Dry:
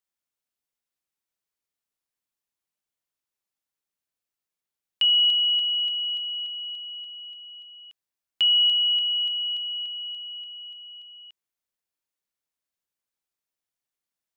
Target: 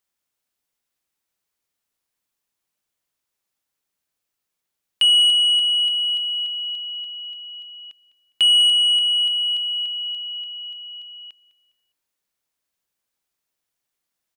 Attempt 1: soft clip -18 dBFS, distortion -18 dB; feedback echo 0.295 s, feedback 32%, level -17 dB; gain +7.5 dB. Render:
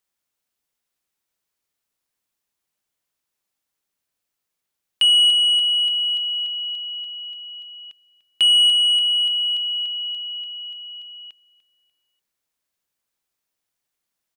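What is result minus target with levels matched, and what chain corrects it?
echo 91 ms late
soft clip -18 dBFS, distortion -18 dB; feedback echo 0.204 s, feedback 32%, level -17 dB; gain +7.5 dB

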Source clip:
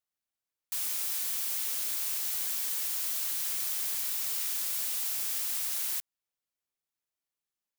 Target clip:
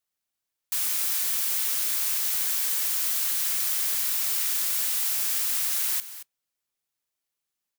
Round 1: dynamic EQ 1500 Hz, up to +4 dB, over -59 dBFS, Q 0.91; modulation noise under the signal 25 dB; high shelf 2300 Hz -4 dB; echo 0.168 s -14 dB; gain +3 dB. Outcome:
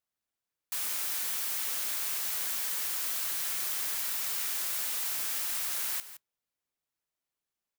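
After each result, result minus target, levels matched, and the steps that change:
echo 58 ms early; 2000 Hz band +3.5 dB
change: echo 0.226 s -14 dB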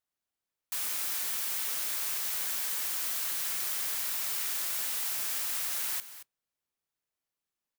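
2000 Hz band +3.5 dB
change: high shelf 2300 Hz +3 dB

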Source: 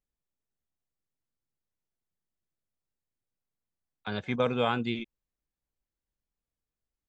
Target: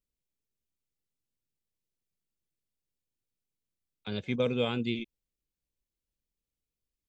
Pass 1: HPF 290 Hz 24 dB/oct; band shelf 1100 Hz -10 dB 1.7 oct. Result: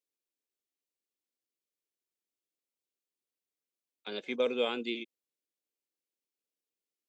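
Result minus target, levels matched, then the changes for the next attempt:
250 Hz band -4.5 dB
remove: HPF 290 Hz 24 dB/oct

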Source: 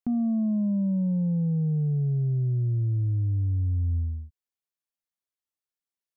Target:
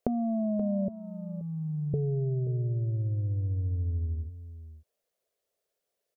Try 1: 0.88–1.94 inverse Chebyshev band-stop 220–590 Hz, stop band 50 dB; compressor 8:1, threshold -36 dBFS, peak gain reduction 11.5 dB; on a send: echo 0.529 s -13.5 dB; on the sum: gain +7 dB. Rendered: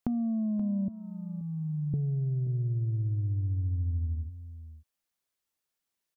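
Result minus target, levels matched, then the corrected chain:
500 Hz band -13.5 dB
0.88–1.94 inverse Chebyshev band-stop 220–590 Hz, stop band 50 dB; compressor 8:1, threshold -36 dBFS, peak gain reduction 11.5 dB; band shelf 520 Hz +15.5 dB 1 oct; on a send: echo 0.529 s -13.5 dB; on the sum: gain +7 dB

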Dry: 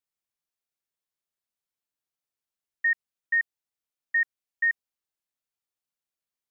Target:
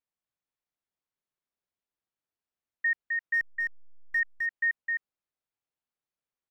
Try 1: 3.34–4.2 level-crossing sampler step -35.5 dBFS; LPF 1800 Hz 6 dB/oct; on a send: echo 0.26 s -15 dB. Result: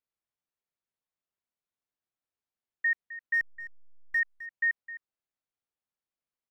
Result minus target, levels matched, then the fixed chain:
echo-to-direct -11.5 dB
3.34–4.2 level-crossing sampler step -35.5 dBFS; LPF 1800 Hz 6 dB/oct; on a send: echo 0.26 s -3.5 dB

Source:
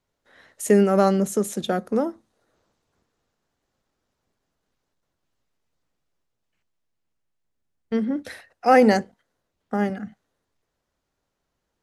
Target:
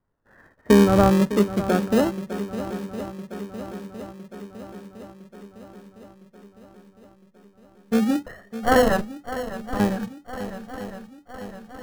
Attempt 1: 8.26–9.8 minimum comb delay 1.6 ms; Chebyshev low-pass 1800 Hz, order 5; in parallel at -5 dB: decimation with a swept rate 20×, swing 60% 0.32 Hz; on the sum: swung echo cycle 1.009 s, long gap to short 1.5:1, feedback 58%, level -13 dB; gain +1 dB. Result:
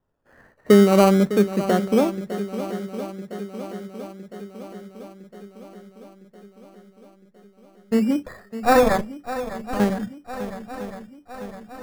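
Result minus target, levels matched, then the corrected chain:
decimation with a swept rate: distortion -13 dB
8.26–9.8 minimum comb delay 1.6 ms; Chebyshev low-pass 1800 Hz, order 5; in parallel at -5 dB: decimation with a swept rate 50×, swing 60% 0.32 Hz; on the sum: swung echo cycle 1.009 s, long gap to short 1.5:1, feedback 58%, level -13 dB; gain +1 dB

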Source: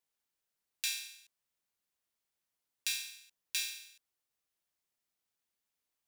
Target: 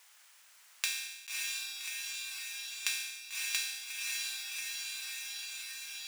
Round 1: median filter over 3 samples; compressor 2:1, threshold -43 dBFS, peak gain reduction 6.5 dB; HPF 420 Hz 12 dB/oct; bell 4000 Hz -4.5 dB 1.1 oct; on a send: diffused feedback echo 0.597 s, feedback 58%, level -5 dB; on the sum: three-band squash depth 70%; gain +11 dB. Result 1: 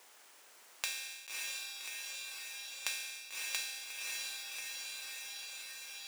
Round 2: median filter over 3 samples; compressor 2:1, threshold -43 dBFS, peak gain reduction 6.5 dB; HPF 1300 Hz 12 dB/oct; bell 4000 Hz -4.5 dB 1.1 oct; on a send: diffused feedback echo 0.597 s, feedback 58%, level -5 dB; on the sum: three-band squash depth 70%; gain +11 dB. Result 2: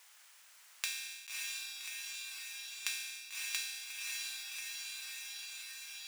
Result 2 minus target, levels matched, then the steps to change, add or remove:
compressor: peak gain reduction +4 dB
change: compressor 2:1, threshold -35 dBFS, peak gain reduction 2.5 dB

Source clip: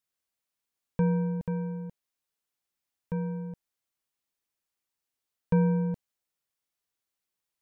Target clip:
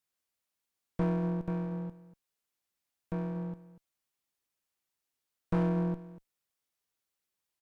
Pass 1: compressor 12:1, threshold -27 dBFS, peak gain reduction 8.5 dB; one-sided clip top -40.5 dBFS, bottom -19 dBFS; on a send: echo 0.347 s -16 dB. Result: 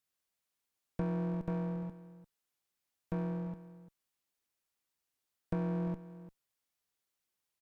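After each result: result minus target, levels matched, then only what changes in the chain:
echo 0.107 s late; compressor: peak gain reduction +8.5 dB
change: echo 0.24 s -16 dB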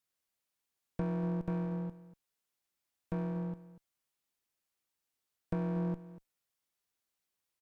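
compressor: peak gain reduction +8.5 dB
remove: compressor 12:1, threshold -27 dBFS, peak gain reduction 8.5 dB

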